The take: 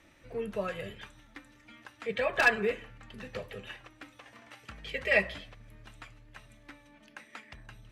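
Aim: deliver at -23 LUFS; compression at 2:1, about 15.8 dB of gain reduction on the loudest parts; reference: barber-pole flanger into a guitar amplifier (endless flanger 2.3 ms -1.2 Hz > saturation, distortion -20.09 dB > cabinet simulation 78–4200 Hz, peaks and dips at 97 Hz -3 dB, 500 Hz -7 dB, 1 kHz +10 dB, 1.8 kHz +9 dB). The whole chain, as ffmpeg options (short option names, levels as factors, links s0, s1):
-filter_complex "[0:a]acompressor=threshold=0.00355:ratio=2,asplit=2[s0][s1];[s1]adelay=2.3,afreqshift=-1.2[s2];[s0][s2]amix=inputs=2:normalize=1,asoftclip=threshold=0.0178,highpass=78,equalizer=f=97:t=q:w=4:g=-3,equalizer=f=500:t=q:w=4:g=-7,equalizer=f=1000:t=q:w=4:g=10,equalizer=f=1800:t=q:w=4:g=9,lowpass=f=4200:w=0.5412,lowpass=f=4200:w=1.3066,volume=18.8"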